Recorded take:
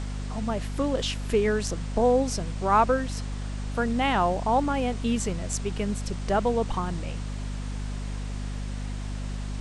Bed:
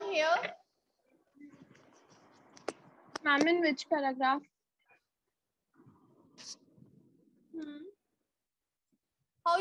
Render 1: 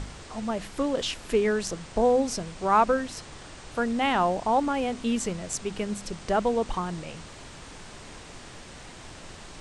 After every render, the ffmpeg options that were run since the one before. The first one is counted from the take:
-af "bandreject=f=50:t=h:w=4,bandreject=f=100:t=h:w=4,bandreject=f=150:t=h:w=4,bandreject=f=200:t=h:w=4,bandreject=f=250:t=h:w=4"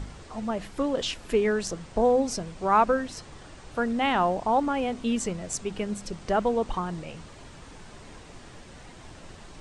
-af "afftdn=nr=6:nf=-45"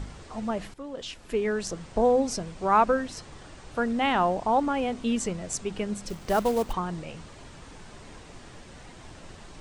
-filter_complex "[0:a]asettb=1/sr,asplit=3[s0][s1][s2];[s0]atrim=end=6.084[s3];[s1]atrim=start=6.08:end=6.73,asetpts=PTS-STARTPTS,afade=t=in:d=0.004:c=qsin,afade=t=out:st=0.646:d=0.004:c=qsin,acrusher=bits=4:mode=log:mix=0:aa=0.000001[s4];[s2]atrim=start=6.726[s5];[s3][s4]acrossfade=d=0.004:c1=hsin:c2=qsin[s6];[s6][s5]acrossfade=d=0.004:c1=qsin:c2=hsin,asplit=2[s7][s8];[s7]atrim=end=0.74,asetpts=PTS-STARTPTS,afade=t=out:st=0.736:d=0.004:c=hsin:silence=0.16788[s9];[s8]atrim=start=0.74,asetpts=PTS-STARTPTS,afade=t=in:d=1.11:silence=0.16788[s10];[s9][s10]concat=n=2:v=0:a=1"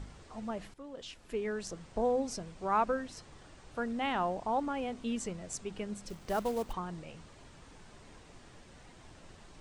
-af "volume=0.376"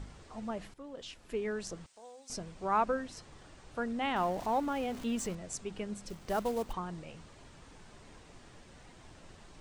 -filter_complex "[0:a]asettb=1/sr,asplit=3[s0][s1][s2];[s0]atrim=end=1.864[s3];[s1]atrim=start=1.86:end=2.3,asetpts=PTS-STARTPTS,afade=t=in:d=0.004:c=qsin,afade=t=out:st=0.436:d=0.004:c=qsin,aderivative[s4];[s2]atrim=start=2.296[s5];[s3][s4]acrossfade=d=0.004:c1=hsin:c2=qsin[s6];[s6][s5]acrossfade=d=0.004:c1=qsin:c2=hsin,asettb=1/sr,asplit=3[s7][s8][s9];[s7]atrim=end=4.164[s10];[s8]atrim=start=4.16:end=5.35,asetpts=PTS-STARTPTS,afade=t=in:d=0.004:c=qsin,afade=t=out:st=1.186:d=0.004:c=qsin,aeval=exprs='val(0)+0.5*0.00668*sgn(val(0))':c=same[s11];[s9]atrim=start=5.346[s12];[s10][s11]acrossfade=d=0.004:c1=hsin:c2=qsin[s13];[s13][s12]acrossfade=d=0.004:c1=qsin:c2=hsin"

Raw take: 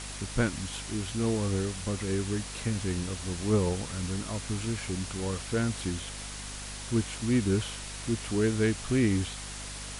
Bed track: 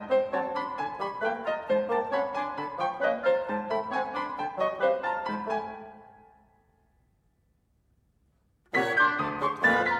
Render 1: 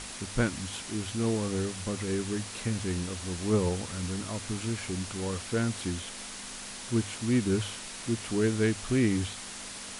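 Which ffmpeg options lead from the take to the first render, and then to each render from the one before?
-af "bandreject=f=50:t=h:w=6,bandreject=f=100:t=h:w=6,bandreject=f=150:t=h:w=6"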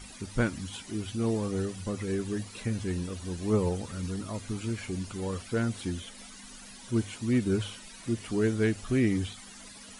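-af "afftdn=nr=14:nf=-42"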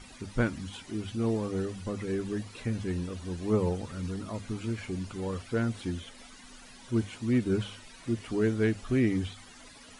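-af "lowpass=f=3900:p=1,bandreject=f=50:t=h:w=6,bandreject=f=100:t=h:w=6,bandreject=f=150:t=h:w=6,bandreject=f=200:t=h:w=6"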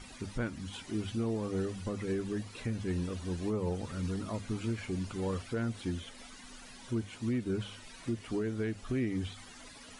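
-af "alimiter=level_in=1.12:limit=0.0631:level=0:latency=1:release=352,volume=0.891"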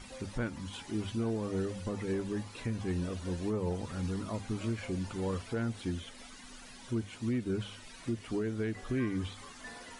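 -filter_complex "[1:a]volume=0.0501[s0];[0:a][s0]amix=inputs=2:normalize=0"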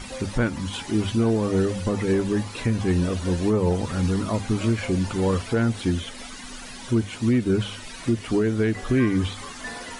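-af "volume=3.98"

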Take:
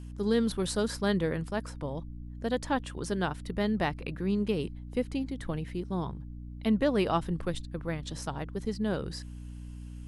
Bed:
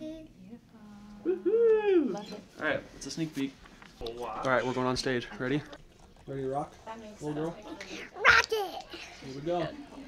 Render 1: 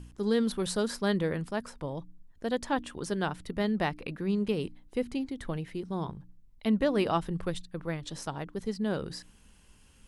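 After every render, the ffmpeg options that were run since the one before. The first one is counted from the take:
-af "bandreject=f=60:t=h:w=4,bandreject=f=120:t=h:w=4,bandreject=f=180:t=h:w=4,bandreject=f=240:t=h:w=4,bandreject=f=300:t=h:w=4"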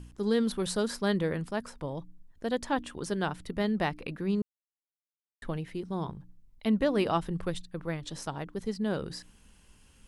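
-filter_complex "[0:a]asplit=3[s0][s1][s2];[s0]atrim=end=4.42,asetpts=PTS-STARTPTS,afade=t=out:st=4.416:d=0.004:c=hsin[s3];[s1]atrim=start=4.42:end=5.42,asetpts=PTS-STARTPTS,volume=0[s4];[s2]atrim=start=5.42,asetpts=PTS-STARTPTS,afade=t=in:d=0.004:c=hsin[s5];[s3][s4][s5]concat=n=3:v=0:a=1"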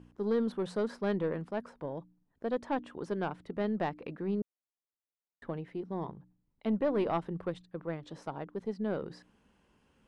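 -af "bandpass=f=520:t=q:w=0.53:csg=0,aeval=exprs='(tanh(11.2*val(0)+0.2)-tanh(0.2))/11.2':c=same"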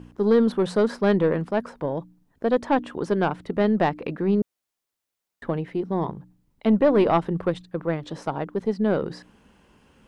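-af "volume=3.76"

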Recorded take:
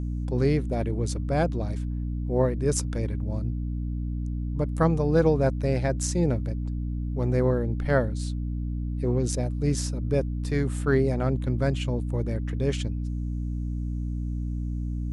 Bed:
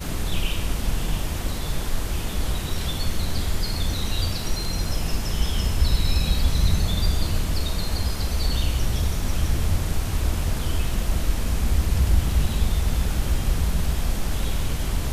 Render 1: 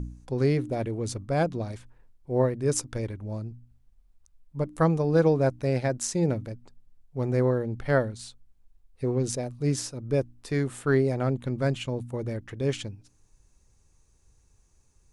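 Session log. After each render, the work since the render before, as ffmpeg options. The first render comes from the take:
-af "bandreject=f=60:t=h:w=4,bandreject=f=120:t=h:w=4,bandreject=f=180:t=h:w=4,bandreject=f=240:t=h:w=4,bandreject=f=300:t=h:w=4"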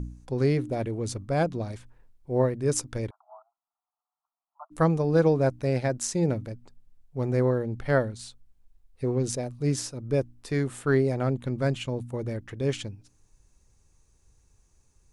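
-filter_complex "[0:a]asplit=3[s0][s1][s2];[s0]afade=t=out:st=3.09:d=0.02[s3];[s1]asuperpass=centerf=960:order=20:qfactor=1.3,afade=t=in:st=3.09:d=0.02,afade=t=out:st=4.7:d=0.02[s4];[s2]afade=t=in:st=4.7:d=0.02[s5];[s3][s4][s5]amix=inputs=3:normalize=0"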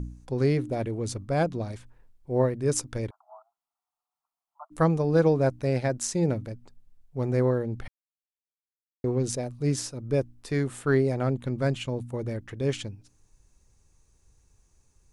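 -filter_complex "[0:a]asplit=3[s0][s1][s2];[s0]atrim=end=7.88,asetpts=PTS-STARTPTS,afade=t=out:st=7.876:d=0.004:c=hsin[s3];[s1]atrim=start=7.88:end=9.04,asetpts=PTS-STARTPTS,volume=0[s4];[s2]atrim=start=9.04,asetpts=PTS-STARTPTS,afade=t=in:d=0.004:c=hsin[s5];[s3][s4][s5]concat=n=3:v=0:a=1"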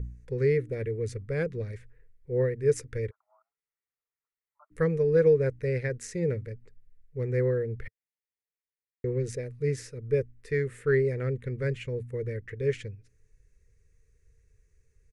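-af "firequalizer=gain_entry='entry(100,0);entry(290,-14);entry(450,6);entry(690,-23);entry(1900,5);entry(3100,-11)':delay=0.05:min_phase=1"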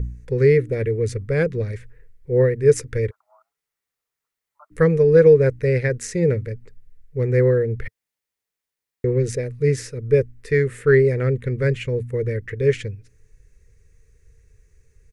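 -af "volume=2.99,alimiter=limit=0.708:level=0:latency=1"

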